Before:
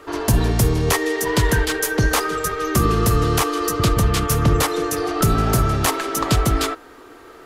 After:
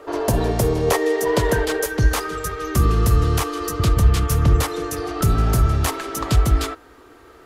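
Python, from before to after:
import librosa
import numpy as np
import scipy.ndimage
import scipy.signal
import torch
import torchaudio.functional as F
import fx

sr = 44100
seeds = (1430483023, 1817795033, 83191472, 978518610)

y = fx.peak_eq(x, sr, hz=fx.steps((0.0, 570.0), (1.86, 65.0)), db=11.0, octaves=1.3)
y = y * librosa.db_to_amplitude(-4.5)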